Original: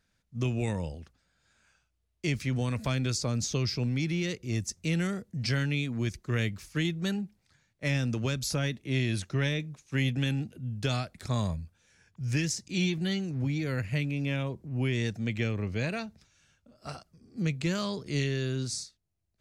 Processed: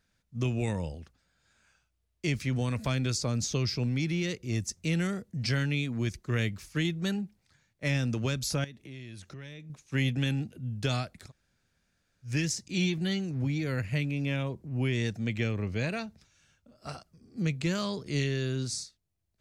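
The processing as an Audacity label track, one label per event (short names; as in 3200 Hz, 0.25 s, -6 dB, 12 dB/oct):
8.640000	9.700000	compressor 4:1, threshold -44 dBFS
11.240000	12.300000	room tone, crossfade 0.16 s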